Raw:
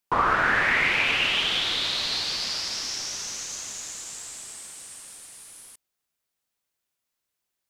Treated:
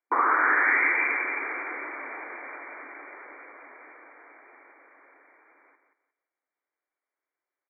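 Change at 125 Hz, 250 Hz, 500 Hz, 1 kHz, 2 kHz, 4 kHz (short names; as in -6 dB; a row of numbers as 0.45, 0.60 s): under -40 dB, -3.0 dB, -3.0 dB, 0.0 dB, -0.5 dB, under -40 dB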